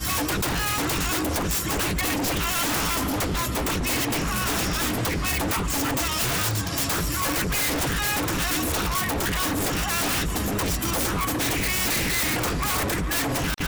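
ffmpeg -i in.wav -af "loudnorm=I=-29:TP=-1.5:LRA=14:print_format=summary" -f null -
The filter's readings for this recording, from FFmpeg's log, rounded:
Input Integrated:    -23.9 LUFS
Input True Peak:     -14.2 dBTP
Input LRA:             0.4 LU
Input Threshold:     -33.9 LUFS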